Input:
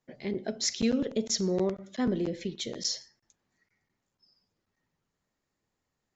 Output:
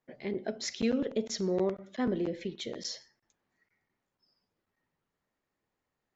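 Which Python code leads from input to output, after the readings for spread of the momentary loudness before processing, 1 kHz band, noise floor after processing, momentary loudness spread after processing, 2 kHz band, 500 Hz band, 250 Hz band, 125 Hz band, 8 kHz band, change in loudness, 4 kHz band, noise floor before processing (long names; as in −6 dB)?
8 LU, 0.0 dB, below −85 dBFS, 8 LU, −0.5 dB, −0.5 dB, −2.5 dB, −4.0 dB, can't be measured, −2.5 dB, −6.5 dB, −84 dBFS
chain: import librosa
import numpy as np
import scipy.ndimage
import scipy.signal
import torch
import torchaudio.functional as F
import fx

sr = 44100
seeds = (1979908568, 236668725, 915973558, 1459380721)

y = fx.bass_treble(x, sr, bass_db=-5, treble_db=-10)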